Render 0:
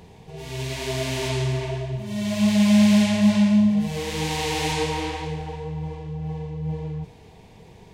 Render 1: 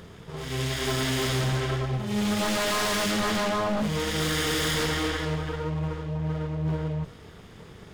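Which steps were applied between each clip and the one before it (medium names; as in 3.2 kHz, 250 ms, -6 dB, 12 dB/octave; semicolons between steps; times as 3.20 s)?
comb filter that takes the minimum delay 0.59 ms; tone controls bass -3 dB, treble -2 dB; wavefolder -25 dBFS; trim +4 dB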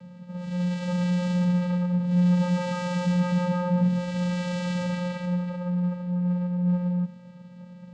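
vocoder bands 8, square 178 Hz; trim +3.5 dB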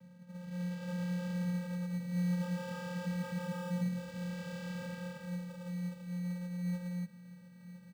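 feedback comb 400 Hz, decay 0.44 s, mix 70%; in parallel at -4 dB: sample-and-hold 21×; on the sum: delay 1014 ms -13 dB; trim -5.5 dB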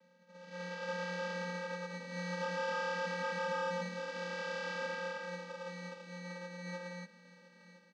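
Chebyshev band-pass 300–5800 Hz, order 3; level rider gain up to 7 dB; dynamic bell 1.2 kHz, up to +4 dB, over -54 dBFS, Q 1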